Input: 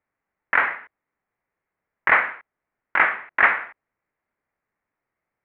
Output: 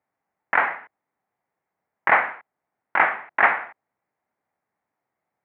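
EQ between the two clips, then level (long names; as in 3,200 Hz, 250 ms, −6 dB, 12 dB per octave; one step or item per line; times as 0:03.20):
high-pass filter 120 Hz 12 dB per octave
low-shelf EQ 330 Hz +6.5 dB
parametric band 780 Hz +9 dB 0.7 octaves
−3.0 dB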